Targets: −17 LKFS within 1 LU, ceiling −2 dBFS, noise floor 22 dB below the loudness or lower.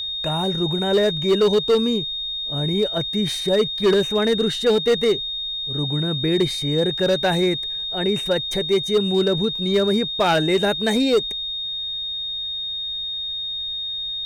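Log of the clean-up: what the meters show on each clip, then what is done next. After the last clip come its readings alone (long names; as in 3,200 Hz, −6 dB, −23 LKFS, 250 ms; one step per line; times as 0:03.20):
share of clipped samples 1.4%; peaks flattened at −12.0 dBFS; interfering tone 3,700 Hz; level of the tone −25 dBFS; integrated loudness −20.5 LKFS; sample peak −12.0 dBFS; target loudness −17.0 LKFS
→ clipped peaks rebuilt −12 dBFS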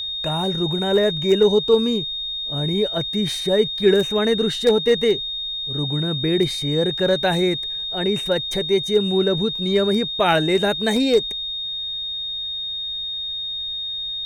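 share of clipped samples 0.0%; interfering tone 3,700 Hz; level of the tone −25 dBFS
→ notch filter 3,700 Hz, Q 30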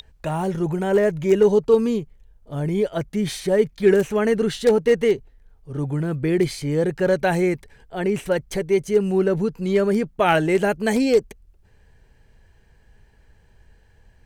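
interfering tone none found; integrated loudness −21.0 LKFS; sample peak −4.5 dBFS; target loudness −17.0 LKFS
→ level +4 dB
brickwall limiter −2 dBFS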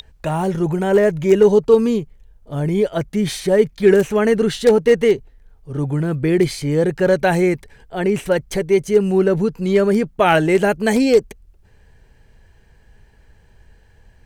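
integrated loudness −17.0 LKFS; sample peak −2.0 dBFS; background noise floor −52 dBFS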